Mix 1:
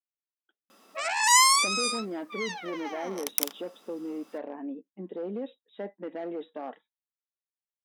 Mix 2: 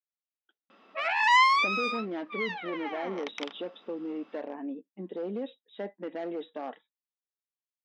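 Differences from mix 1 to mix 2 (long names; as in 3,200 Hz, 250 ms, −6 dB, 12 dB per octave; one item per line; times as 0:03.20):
background: add low-pass filter 3,000 Hz 24 dB per octave
master: add high-shelf EQ 3,300 Hz +8.5 dB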